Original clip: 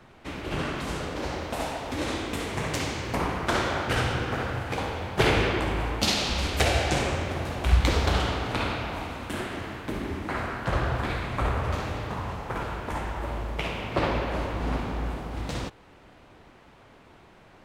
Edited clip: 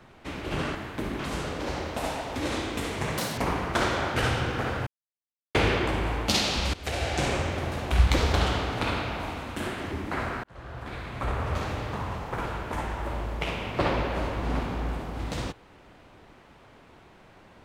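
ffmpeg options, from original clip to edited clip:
-filter_complex "[0:a]asplit=10[s0][s1][s2][s3][s4][s5][s6][s7][s8][s9];[s0]atrim=end=0.752[s10];[s1]atrim=start=9.648:end=10.092[s11];[s2]atrim=start=0.748:end=2.744[s12];[s3]atrim=start=2.74:end=3.11,asetpts=PTS-STARTPTS,asetrate=82908,aresample=44100,atrim=end_sample=8679,asetpts=PTS-STARTPTS[s13];[s4]atrim=start=3.106:end=4.6,asetpts=PTS-STARTPTS,afade=t=out:st=1.49:d=0.004:c=hsin[s14];[s5]atrim=start=4.6:end=5.28,asetpts=PTS-STARTPTS,volume=0[s15];[s6]atrim=start=5.28:end=6.47,asetpts=PTS-STARTPTS,afade=t=in:d=0.004:c=hsin,afade=t=out:st=1.186:d=0.004:c=hsin:silence=0.141254[s16];[s7]atrim=start=6.47:end=9.652,asetpts=PTS-STARTPTS,afade=t=in:d=0.59:silence=0.141254[s17];[s8]atrim=start=10.088:end=10.61,asetpts=PTS-STARTPTS,afade=t=out:st=0.518:d=0.004:c=hsin[s18];[s9]atrim=start=10.61,asetpts=PTS-STARTPTS,afade=t=in:d=1.22[s19];[s10][s11]acrossfade=d=0.004:c1=hsin:c2=hsin[s20];[s20][s12]acrossfade=d=0.004:c1=hsin:c2=hsin[s21];[s21][s13]acrossfade=d=0.004:c1=hsin:c2=hsin[s22];[s14][s15][s16][s17]concat=n=4:v=0:a=1[s23];[s22][s23]acrossfade=d=0.004:c1=hsin:c2=hsin[s24];[s18][s19]concat=n=2:v=0:a=1[s25];[s24][s25]acrossfade=d=0.004:c1=hsin:c2=hsin"

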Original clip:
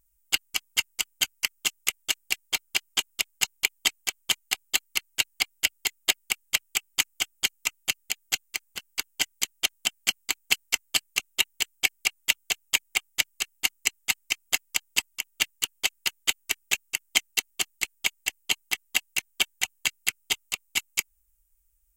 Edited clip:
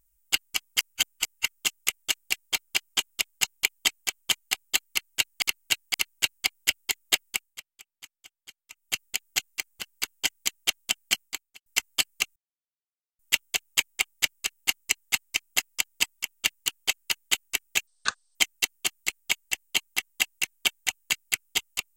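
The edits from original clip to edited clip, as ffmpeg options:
-filter_complex "[0:a]asplit=12[s0][s1][s2][s3][s4][s5][s6][s7][s8][s9][s10][s11];[s0]atrim=end=0.792[s12];[s1]atrim=start=0.788:end=1.452,asetpts=PTS-STARTPTS,areverse[s13];[s2]atrim=start=1.448:end=5.422[s14];[s3]atrim=start=4.898:end=5.422[s15];[s4]atrim=start=4.898:end=6.57,asetpts=PTS-STARTPTS,afade=t=out:st=1.352:d=0.32:silence=0.0707946[s16];[s5]atrim=start=6.57:end=7.66,asetpts=PTS-STARTPTS,volume=0.0708[s17];[s6]atrim=start=7.66:end=10.62,asetpts=PTS-STARTPTS,afade=t=in:d=0.32:silence=0.0707946,afade=t=out:st=2.5:d=0.46:c=qua[s18];[s7]atrim=start=10.62:end=11.32,asetpts=PTS-STARTPTS,afade=t=in:d=0.004:c=hsin,afade=t=out:st=0.696:d=0.004:c=hsin[s19];[s8]atrim=start=11.32:end=12.15,asetpts=PTS-STARTPTS,volume=0[s20];[s9]atrim=start=12.15:end=16.834,asetpts=PTS-STARTPTS,afade=t=in:d=0.004:c=hsin[s21];[s10]atrim=start=16.83:end=17.1,asetpts=PTS-STARTPTS,asetrate=24696,aresample=44100,atrim=end_sample=21262,asetpts=PTS-STARTPTS[s22];[s11]atrim=start=17.096[s23];[s12][s13]acrossfade=d=0.004:c1=hsin:c2=hsin[s24];[s24][s14]acrossfade=d=0.004:c1=hsin:c2=hsin[s25];[s25][s15]acrossfade=d=0.004:c1=hsin:c2=hsin[s26];[s16][s17][s18][s19][s20][s21]concat=n=6:v=0:a=1[s27];[s26][s27]acrossfade=d=0.004:c1=hsin:c2=hsin[s28];[s28][s22]acrossfade=d=0.004:c1=hsin:c2=hsin[s29];[s29][s23]acrossfade=d=0.004:c1=hsin:c2=hsin"

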